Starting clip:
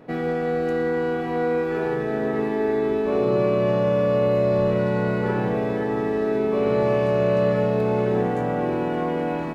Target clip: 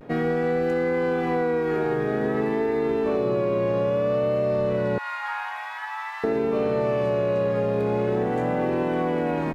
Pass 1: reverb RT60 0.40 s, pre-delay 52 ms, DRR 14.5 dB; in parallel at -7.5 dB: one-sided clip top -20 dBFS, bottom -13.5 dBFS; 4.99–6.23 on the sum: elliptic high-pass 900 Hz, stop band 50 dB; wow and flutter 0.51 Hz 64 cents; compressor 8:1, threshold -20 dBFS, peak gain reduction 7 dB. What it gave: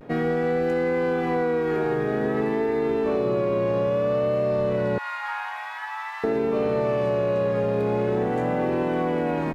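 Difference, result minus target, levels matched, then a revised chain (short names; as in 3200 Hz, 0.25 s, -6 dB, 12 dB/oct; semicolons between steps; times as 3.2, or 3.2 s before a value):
one-sided clip: distortion +10 dB
reverb RT60 0.40 s, pre-delay 52 ms, DRR 14.5 dB; in parallel at -7.5 dB: one-sided clip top -13.5 dBFS, bottom -13.5 dBFS; 4.99–6.23 on the sum: elliptic high-pass 900 Hz, stop band 50 dB; wow and flutter 0.51 Hz 64 cents; compressor 8:1, threshold -20 dBFS, peak gain reduction 7.5 dB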